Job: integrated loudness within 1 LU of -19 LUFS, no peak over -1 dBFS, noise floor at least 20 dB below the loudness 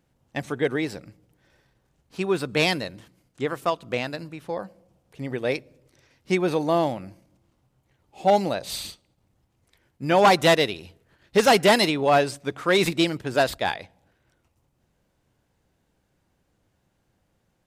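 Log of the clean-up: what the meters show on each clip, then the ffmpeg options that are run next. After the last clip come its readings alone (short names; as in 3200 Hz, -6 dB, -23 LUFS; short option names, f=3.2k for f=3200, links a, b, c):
loudness -23.0 LUFS; peak -7.5 dBFS; loudness target -19.0 LUFS
-> -af "volume=4dB"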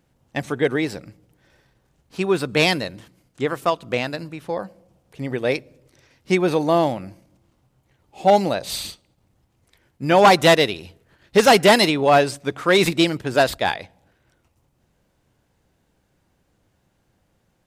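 loudness -19.5 LUFS; peak -3.5 dBFS; noise floor -67 dBFS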